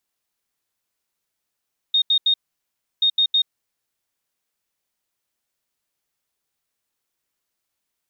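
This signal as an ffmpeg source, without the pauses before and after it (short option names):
-f lavfi -i "aevalsrc='0.2*sin(2*PI*3700*t)*clip(min(mod(mod(t,1.08),0.16),0.08-mod(mod(t,1.08),0.16))/0.005,0,1)*lt(mod(t,1.08),0.48)':d=2.16:s=44100"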